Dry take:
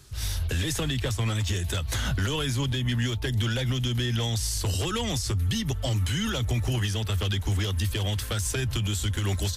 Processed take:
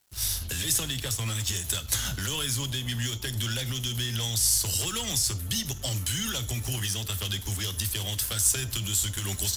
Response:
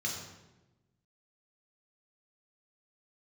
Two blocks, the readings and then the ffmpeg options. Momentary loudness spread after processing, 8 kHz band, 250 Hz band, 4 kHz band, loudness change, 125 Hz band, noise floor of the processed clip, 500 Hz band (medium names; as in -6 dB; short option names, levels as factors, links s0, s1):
7 LU, +8.0 dB, -7.0 dB, +1.5 dB, 0.0 dB, -6.0 dB, -38 dBFS, -7.5 dB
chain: -filter_complex "[0:a]crystalizer=i=5:c=0,aeval=exprs='sgn(val(0))*max(abs(val(0))-0.015,0)':c=same,asplit=2[s0][s1];[1:a]atrim=start_sample=2205,afade=t=out:st=0.16:d=0.01,atrim=end_sample=7497[s2];[s1][s2]afir=irnorm=-1:irlink=0,volume=0.168[s3];[s0][s3]amix=inputs=2:normalize=0,volume=0.531"